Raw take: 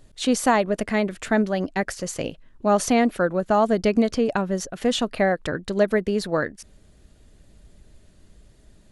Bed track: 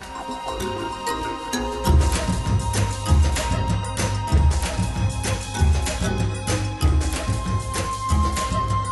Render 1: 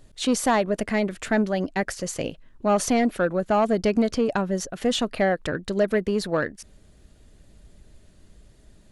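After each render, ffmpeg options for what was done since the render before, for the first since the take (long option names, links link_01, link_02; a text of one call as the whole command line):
ffmpeg -i in.wav -af "asoftclip=type=tanh:threshold=-12dB" out.wav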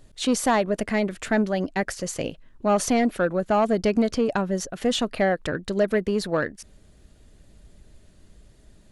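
ffmpeg -i in.wav -af anull out.wav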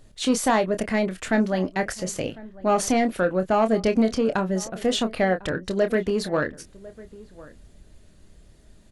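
ffmpeg -i in.wav -filter_complex "[0:a]asplit=2[link_01][link_02];[link_02]adelay=27,volume=-9dB[link_03];[link_01][link_03]amix=inputs=2:normalize=0,asplit=2[link_04][link_05];[link_05]adelay=1050,volume=-20dB,highshelf=frequency=4000:gain=-23.6[link_06];[link_04][link_06]amix=inputs=2:normalize=0" out.wav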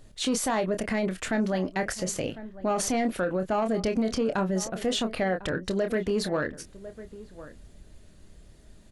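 ffmpeg -i in.wav -af "alimiter=limit=-19dB:level=0:latency=1:release=46" out.wav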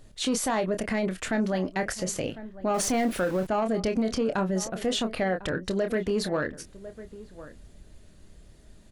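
ffmpeg -i in.wav -filter_complex "[0:a]asettb=1/sr,asplit=3[link_01][link_02][link_03];[link_01]atrim=end=2.744[link_04];[link_02]atrim=start=2.74:end=3.47,asetpts=PTS-STARTPTS,afade=type=in:duration=0.004:curve=qsin,afade=type=out:start_time=0.726:duration=0.004:curve=qsin,aeval=exprs='val(0)+0.5*0.015*sgn(val(0))':channel_layout=same[link_05];[link_03]atrim=start=3.466[link_06];[link_04][link_05]acrossfade=duration=0.004:curve1=hsin:curve2=qsin[link_07];[link_07][link_06]acrossfade=duration=0.004:curve1=qsin:curve2=hsin" out.wav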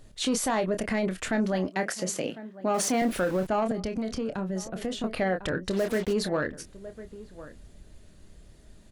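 ffmpeg -i in.wav -filter_complex "[0:a]asettb=1/sr,asplit=3[link_01][link_02][link_03];[link_01]atrim=end=1.684[link_04];[link_02]atrim=start=1.68:end=3.02,asetpts=PTS-STARTPTS,afade=type=in:duration=0.004:curve=qsin,afade=type=out:start_time=1.336:duration=0.004:curve=qsin,highpass=frequency=160:width=0.5412,highpass=frequency=160:width=1.3066[link_05];[link_03]atrim=start=3.016[link_06];[link_04][link_05]acrossfade=duration=0.004:curve1=hsin:curve2=qsin[link_07];[link_07][link_06]acrossfade=duration=0.004:curve1=qsin:curve2=hsin,asettb=1/sr,asplit=3[link_08][link_09][link_10];[link_08]atrim=end=3.714[link_11];[link_09]atrim=start=3.71:end=5.04,asetpts=PTS-STARTPTS,afade=type=in:duration=0.004:curve=qsin,afade=type=out:start_time=1.326:duration=0.004:curve=qsin,acrossover=split=250|510[link_12][link_13][link_14];[link_12]acompressor=threshold=-32dB:ratio=4[link_15];[link_13]acompressor=threshold=-38dB:ratio=4[link_16];[link_14]acompressor=threshold=-38dB:ratio=4[link_17];[link_15][link_16][link_17]amix=inputs=3:normalize=0[link_18];[link_10]atrim=start=5.036[link_19];[link_11][link_18]acrossfade=duration=0.004:curve1=hsin:curve2=qsin[link_20];[link_20][link_19]acrossfade=duration=0.004:curve1=qsin:curve2=hsin,asplit=3[link_21][link_22][link_23];[link_21]afade=type=out:start_time=5.72:duration=0.02[link_24];[link_22]acrusher=bits=5:mix=0:aa=0.5,afade=type=in:start_time=5.72:duration=0.02,afade=type=out:start_time=6.12:duration=0.02[link_25];[link_23]afade=type=in:start_time=6.12:duration=0.02[link_26];[link_24][link_25][link_26]amix=inputs=3:normalize=0" out.wav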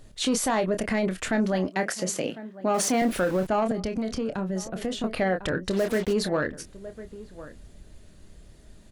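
ffmpeg -i in.wav -af "volume=2dB" out.wav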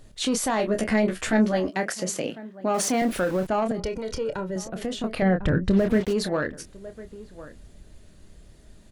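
ffmpeg -i in.wav -filter_complex "[0:a]asettb=1/sr,asplit=3[link_01][link_02][link_03];[link_01]atrim=end=0.584[link_04];[link_02]atrim=start=0.58:end=1.77,asetpts=PTS-STARTPTS,afade=type=in:duration=0.004:curve=qsin,afade=type=out:start_time=1.186:duration=0.004:curve=qsin,asplit=2[link_05][link_06];[link_06]adelay=14,volume=-2dB[link_07];[link_05][link_07]amix=inputs=2:normalize=0,atrim=end_sample=52479[link_08];[link_03]atrim=start=1.766[link_09];[link_04][link_08]acrossfade=duration=0.004:curve1=hsin:curve2=qsin[link_10];[link_10][link_09]acrossfade=duration=0.004:curve1=qsin:curve2=hsin,asettb=1/sr,asplit=3[link_11][link_12][link_13];[link_11]atrim=end=3.794[link_14];[link_12]atrim=start=3.79:end=4.56,asetpts=PTS-STARTPTS,afade=type=in:duration=0.004:curve=qsin,afade=type=out:start_time=0.766:duration=0.004:curve=qsin,aecho=1:1:2.1:0.65,atrim=end_sample=33957[link_15];[link_13]atrim=start=4.556[link_16];[link_14][link_15]acrossfade=duration=0.004:curve1=hsin:curve2=qsin[link_17];[link_17][link_16]acrossfade=duration=0.004:curve1=qsin:curve2=hsin,asettb=1/sr,asplit=3[link_18][link_19][link_20];[link_18]atrim=end=5.224[link_21];[link_19]atrim=start=5.22:end=6.01,asetpts=PTS-STARTPTS,afade=type=in:duration=0.004:curve=qsin,afade=type=out:start_time=0.786:duration=0.004:curve=qsin,bass=frequency=250:gain=13,treble=frequency=4000:gain=-11[link_22];[link_20]atrim=start=6.006[link_23];[link_21][link_22]acrossfade=duration=0.004:curve1=hsin:curve2=qsin[link_24];[link_24][link_23]acrossfade=duration=0.004:curve1=qsin:curve2=hsin" out.wav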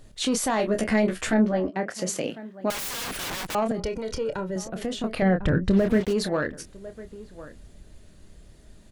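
ffmpeg -i in.wav -filter_complex "[0:a]asplit=3[link_01][link_02][link_03];[link_01]afade=type=out:start_time=1.33:duration=0.02[link_04];[link_02]lowpass=frequency=1200:poles=1,afade=type=in:start_time=1.33:duration=0.02,afade=type=out:start_time=1.94:duration=0.02[link_05];[link_03]afade=type=in:start_time=1.94:duration=0.02[link_06];[link_04][link_05][link_06]amix=inputs=3:normalize=0,asettb=1/sr,asplit=3[link_07][link_08][link_09];[link_07]atrim=end=2.704[link_10];[link_08]atrim=start=2.7:end=3.55,asetpts=PTS-STARTPTS,afade=type=in:duration=0.004:curve=qsin,afade=type=out:start_time=0.846:duration=0.004:curve=qsin,aeval=exprs='(mod(23.7*val(0)+1,2)-1)/23.7':channel_layout=same[link_11];[link_09]atrim=start=3.546[link_12];[link_10][link_11]acrossfade=duration=0.004:curve1=hsin:curve2=qsin[link_13];[link_13][link_12]acrossfade=duration=0.004:curve1=qsin:curve2=hsin" out.wav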